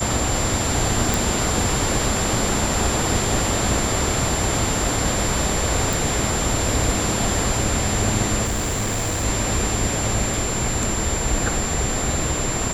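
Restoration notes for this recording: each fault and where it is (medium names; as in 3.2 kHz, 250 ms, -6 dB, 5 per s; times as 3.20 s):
whine 7.3 kHz -26 dBFS
1.14 s: pop
5.93 s: pop
8.44–9.25 s: clipped -19.5 dBFS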